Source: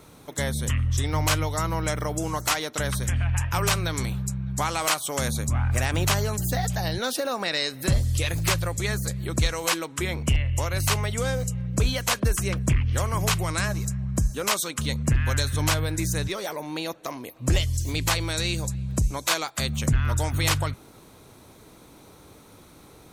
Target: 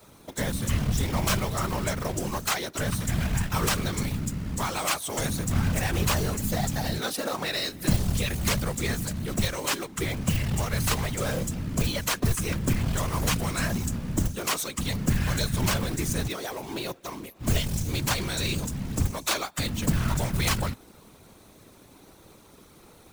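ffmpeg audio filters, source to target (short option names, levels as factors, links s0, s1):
-af "acrusher=bits=2:mode=log:mix=0:aa=0.000001,adynamicequalizer=threshold=0.00794:dfrequency=160:dqfactor=1.5:tfrequency=160:tqfactor=1.5:attack=5:release=100:ratio=0.375:range=1.5:mode=boostabove:tftype=bell,afftfilt=real='hypot(re,im)*cos(2*PI*random(0))':imag='hypot(re,im)*sin(2*PI*random(1))':win_size=512:overlap=0.75,volume=1.41"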